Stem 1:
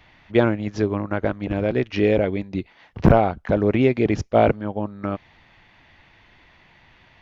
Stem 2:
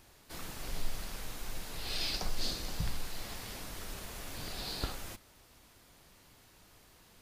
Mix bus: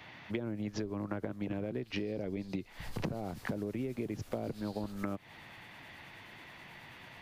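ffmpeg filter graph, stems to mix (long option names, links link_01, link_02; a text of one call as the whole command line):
ffmpeg -i stem1.wav -i stem2.wav -filter_complex "[0:a]acrossover=split=450[link_01][link_02];[link_02]acompressor=threshold=-33dB:ratio=2.5[link_03];[link_01][link_03]amix=inputs=2:normalize=0,highpass=frequency=100:width=0.5412,highpass=frequency=100:width=1.3066,acompressor=threshold=-25dB:ratio=6,volume=2.5dB[link_04];[1:a]acrossover=split=1200[link_05][link_06];[link_05]aeval=exprs='val(0)*(1-0.5/2+0.5/2*cos(2*PI*9.3*n/s))':channel_layout=same[link_07];[link_06]aeval=exprs='val(0)*(1-0.5/2-0.5/2*cos(2*PI*9.3*n/s))':channel_layout=same[link_08];[link_07][link_08]amix=inputs=2:normalize=0,volume=-4.5dB,afade=type=in:start_time=2.72:duration=0.25:silence=0.251189[link_09];[link_04][link_09]amix=inputs=2:normalize=0,acompressor=threshold=-35dB:ratio=4" out.wav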